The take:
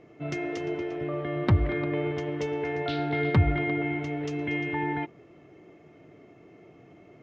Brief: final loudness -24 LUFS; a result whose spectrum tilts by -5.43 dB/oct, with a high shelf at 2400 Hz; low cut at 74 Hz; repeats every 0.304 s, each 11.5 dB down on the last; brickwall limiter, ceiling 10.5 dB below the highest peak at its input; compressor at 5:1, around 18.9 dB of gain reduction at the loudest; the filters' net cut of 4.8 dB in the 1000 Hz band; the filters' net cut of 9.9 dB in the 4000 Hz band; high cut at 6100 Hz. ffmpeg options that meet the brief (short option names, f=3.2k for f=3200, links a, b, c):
-af "highpass=74,lowpass=6.1k,equalizer=f=1k:t=o:g=-5.5,highshelf=f=2.4k:g=-9,equalizer=f=4k:t=o:g=-4.5,acompressor=threshold=-39dB:ratio=5,alimiter=level_in=12.5dB:limit=-24dB:level=0:latency=1,volume=-12.5dB,aecho=1:1:304|608|912:0.266|0.0718|0.0194,volume=22dB"